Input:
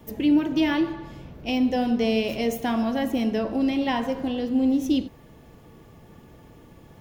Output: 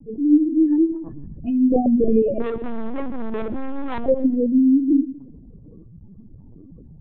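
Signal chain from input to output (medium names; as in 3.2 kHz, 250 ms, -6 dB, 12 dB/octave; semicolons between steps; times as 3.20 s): spectral contrast enhancement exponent 3.7; hum notches 50/100/150/200/250/300/350 Hz; gain riding 0.5 s; 2.41–4.05 s: hard clipper -31 dBFS, distortion -8 dB; thinning echo 126 ms, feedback 46%, high-pass 220 Hz, level -18 dB; LPC vocoder at 8 kHz pitch kept; trim +8 dB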